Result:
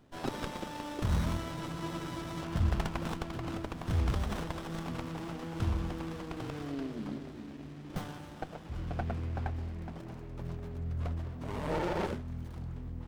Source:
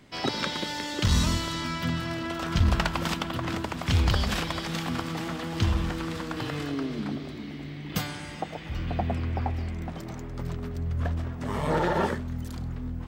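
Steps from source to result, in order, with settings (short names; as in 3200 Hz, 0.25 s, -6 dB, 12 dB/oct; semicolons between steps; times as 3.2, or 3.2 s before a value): notches 50/100/150/200/250 Hz; spectral freeze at 1.55, 0.88 s; running maximum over 17 samples; gain -6 dB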